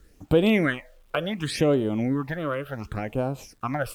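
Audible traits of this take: phasing stages 8, 0.69 Hz, lowest notch 230–1900 Hz; a quantiser's noise floor 12-bit, dither none; AAC

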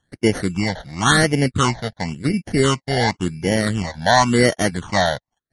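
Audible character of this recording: aliases and images of a low sample rate 2500 Hz, jitter 0%; phasing stages 8, 0.93 Hz, lowest notch 330–1200 Hz; MP3

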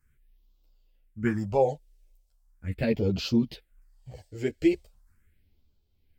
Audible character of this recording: phasing stages 4, 0.39 Hz, lowest notch 180–1800 Hz; tremolo triangle 0.64 Hz, depth 60%; a shimmering, thickened sound

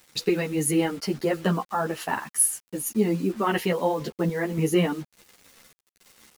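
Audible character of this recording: random-step tremolo; a quantiser's noise floor 8-bit, dither none; a shimmering, thickened sound

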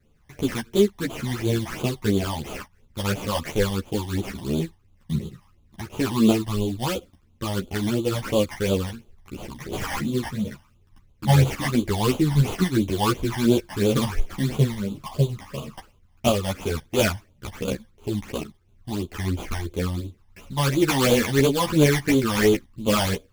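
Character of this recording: aliases and images of a low sample rate 3900 Hz, jitter 20%; phasing stages 12, 2.9 Hz, lowest notch 410–1800 Hz; tremolo saw up 1.9 Hz, depth 30%; a shimmering, thickened sound

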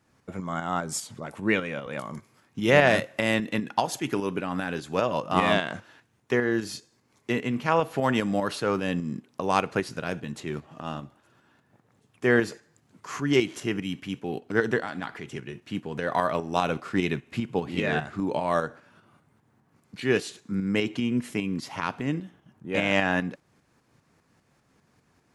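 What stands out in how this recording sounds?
tremolo saw up 5 Hz, depth 50%

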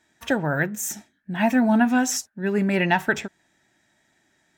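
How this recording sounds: noise floor -68 dBFS; spectral tilt -4.5 dB/oct

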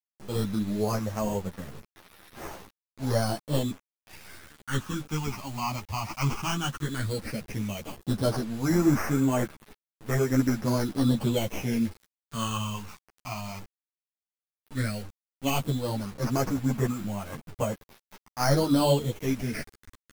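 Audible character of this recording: aliases and images of a low sample rate 3700 Hz, jitter 0%; phasing stages 8, 0.13 Hz, lowest notch 470–4300 Hz; a quantiser's noise floor 8-bit, dither none; a shimmering, thickened sound

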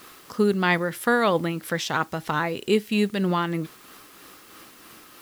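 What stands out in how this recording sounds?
tremolo triangle 3.1 Hz, depth 45%; a quantiser's noise floor 10-bit, dither triangular

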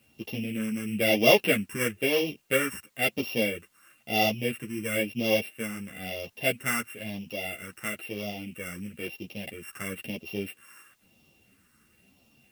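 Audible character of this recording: a buzz of ramps at a fixed pitch in blocks of 16 samples; phasing stages 4, 1 Hz, lowest notch 660–1500 Hz; a quantiser's noise floor 12-bit, dither triangular; a shimmering, thickened sound

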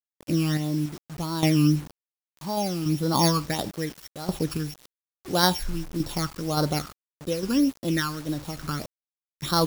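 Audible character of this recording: a buzz of ramps at a fixed pitch in blocks of 8 samples; random-step tremolo, depth 80%; phasing stages 12, 1.7 Hz, lowest notch 620–2400 Hz; a quantiser's noise floor 8-bit, dither none

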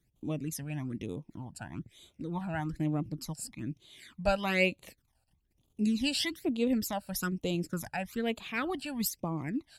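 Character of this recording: phasing stages 12, 1.1 Hz, lowest notch 350–1800 Hz

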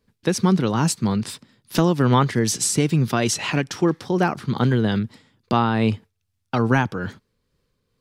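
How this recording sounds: tremolo triangle 2.4 Hz, depth 35%

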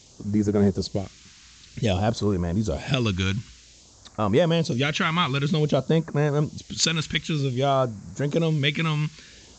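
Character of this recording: a quantiser's noise floor 8-bit, dither triangular; phasing stages 2, 0.53 Hz, lowest notch 530–3000 Hz; µ-law

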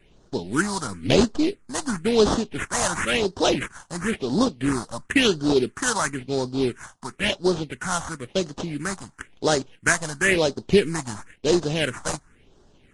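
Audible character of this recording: aliases and images of a low sample rate 4600 Hz, jitter 20%; phasing stages 4, 0.97 Hz, lowest notch 380–2300 Hz; Vorbis

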